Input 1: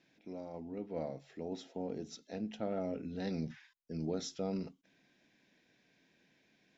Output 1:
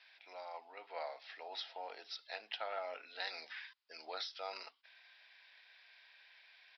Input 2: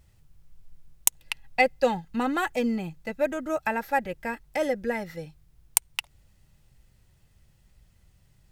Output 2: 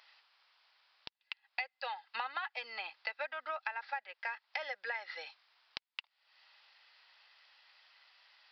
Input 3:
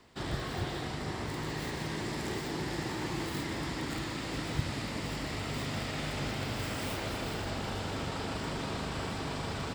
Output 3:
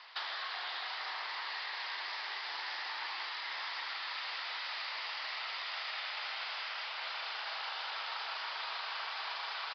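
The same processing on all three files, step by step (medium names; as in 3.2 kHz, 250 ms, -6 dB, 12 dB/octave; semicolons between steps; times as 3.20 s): high-pass 870 Hz 24 dB/octave; treble shelf 3.7 kHz +4 dB; compression 12:1, threshold -46 dBFS; resampled via 11.025 kHz; trim +10 dB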